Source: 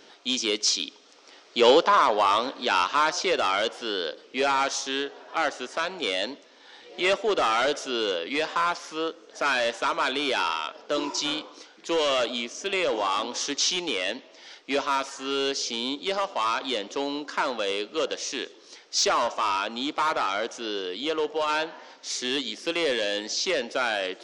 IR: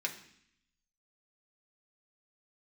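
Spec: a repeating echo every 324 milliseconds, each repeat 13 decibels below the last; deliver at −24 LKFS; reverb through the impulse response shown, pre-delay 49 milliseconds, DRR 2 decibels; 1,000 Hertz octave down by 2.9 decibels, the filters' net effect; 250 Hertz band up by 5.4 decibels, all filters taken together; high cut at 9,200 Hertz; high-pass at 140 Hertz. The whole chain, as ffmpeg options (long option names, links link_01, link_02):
-filter_complex "[0:a]highpass=140,lowpass=9200,equalizer=frequency=250:width_type=o:gain=7.5,equalizer=frequency=1000:width_type=o:gain=-4,aecho=1:1:324|648|972:0.224|0.0493|0.0108,asplit=2[link_01][link_02];[1:a]atrim=start_sample=2205,adelay=49[link_03];[link_02][link_03]afir=irnorm=-1:irlink=0,volume=-5dB[link_04];[link_01][link_04]amix=inputs=2:normalize=0,volume=0.5dB"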